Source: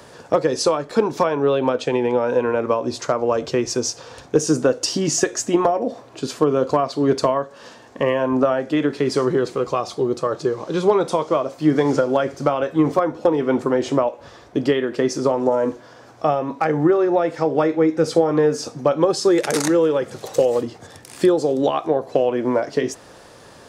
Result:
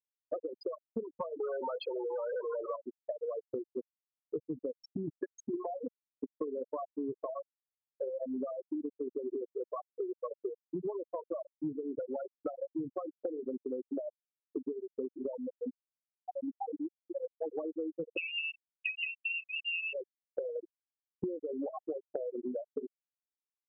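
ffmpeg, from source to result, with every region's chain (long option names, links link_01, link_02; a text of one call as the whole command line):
ffmpeg -i in.wav -filter_complex "[0:a]asettb=1/sr,asplit=3[link_01][link_02][link_03];[link_01]atrim=end=1.404[link_04];[link_02]atrim=start=1.4:end=2.76,asetpts=PTS-STARTPTS,afade=type=in:duration=0.004:curve=qsin,afade=type=out:start_time=1.356:duration=0.004:curve=qsin,asplit=2[link_05][link_06];[link_06]highpass=frequency=720:poles=1,volume=27dB,asoftclip=type=tanh:threshold=-6dB[link_07];[link_05][link_07]amix=inputs=2:normalize=0,lowpass=frequency=6500:poles=1,volume=-6dB,bass=frequency=250:gain=-14,treble=frequency=4000:gain=2[link_08];[link_03]atrim=start=2.756[link_09];[link_04][link_08]acrossfade=duration=0.004:curve1=hsin:curve2=qsin[link_10];[link_10][link_09]acrossfade=duration=0.004:curve1=qsin:curve2=hsin,asettb=1/sr,asplit=3[link_11][link_12][link_13];[link_11]atrim=end=15.384[link_14];[link_12]atrim=start=15.38:end=17.41,asetpts=PTS-STARTPTS,afade=type=in:duration=0.004:curve=qsin,afade=type=out:start_time=2.026:duration=0.004:curve=qsin,acompressor=threshold=-22dB:ratio=5:attack=3.2:release=140:knee=1:detection=peak,aecho=1:1:3.9:0.5,atrim=end_sample=89523[link_15];[link_13]atrim=start=17.406[link_16];[link_14][link_15]acrossfade=duration=0.004:curve1=hsin:curve2=qsin[link_17];[link_17][link_16]acrossfade=duration=0.004:curve1=qsin:curve2=hsin,asettb=1/sr,asplit=3[link_18][link_19][link_20];[link_18]atrim=end=18.174[link_21];[link_19]atrim=start=18.17:end=19.93,asetpts=PTS-STARTPTS,afade=type=in:duration=0.004:curve=qsin,afade=type=out:start_time=1.756:duration=0.004:curve=qsin,lowpass=frequency=2600:width_type=q:width=0.5098,lowpass=frequency=2600:width_type=q:width=0.6013,lowpass=frequency=2600:width_type=q:width=0.9,lowpass=frequency=2600:width_type=q:width=2.563,afreqshift=-3100,asplit=2[link_22][link_23];[link_23]adelay=29,volume=-8.5dB[link_24];[link_22][link_24]amix=inputs=2:normalize=0,atrim=end_sample=77616[link_25];[link_20]atrim=start=19.926[link_26];[link_21][link_25]acrossfade=duration=0.004:curve1=hsin:curve2=qsin[link_27];[link_27][link_26]acrossfade=duration=0.004:curve1=qsin:curve2=hsin,afftfilt=real='re*gte(hypot(re,im),0.631)':imag='im*gte(hypot(re,im),0.631)':win_size=1024:overlap=0.75,acompressor=threshold=-29dB:ratio=12,volume=-5dB" out.wav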